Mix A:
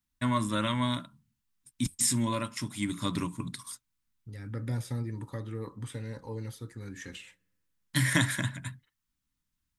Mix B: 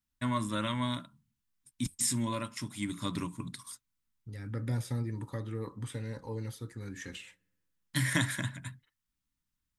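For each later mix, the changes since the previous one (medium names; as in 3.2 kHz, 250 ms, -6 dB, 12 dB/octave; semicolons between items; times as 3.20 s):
first voice -3.5 dB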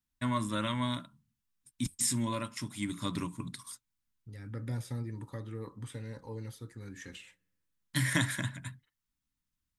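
second voice -3.5 dB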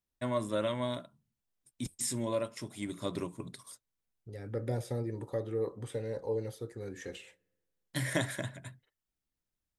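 first voice -4.5 dB; master: add high-order bell 520 Hz +13 dB 1.3 oct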